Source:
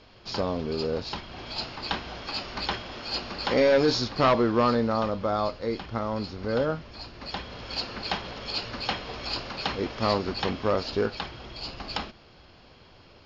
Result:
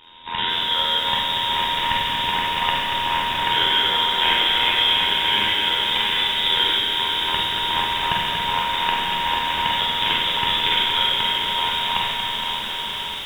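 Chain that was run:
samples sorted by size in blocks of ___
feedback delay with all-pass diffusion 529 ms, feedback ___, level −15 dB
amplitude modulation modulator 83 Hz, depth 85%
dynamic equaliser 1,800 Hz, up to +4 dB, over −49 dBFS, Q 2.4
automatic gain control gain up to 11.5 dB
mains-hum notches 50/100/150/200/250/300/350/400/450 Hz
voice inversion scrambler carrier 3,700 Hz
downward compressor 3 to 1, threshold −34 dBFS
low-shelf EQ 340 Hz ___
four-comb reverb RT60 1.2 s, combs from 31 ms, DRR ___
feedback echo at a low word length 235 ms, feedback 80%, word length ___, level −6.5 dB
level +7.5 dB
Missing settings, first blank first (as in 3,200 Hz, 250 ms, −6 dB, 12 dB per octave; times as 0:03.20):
16 samples, 64%, +7.5 dB, −2.5 dB, 8 bits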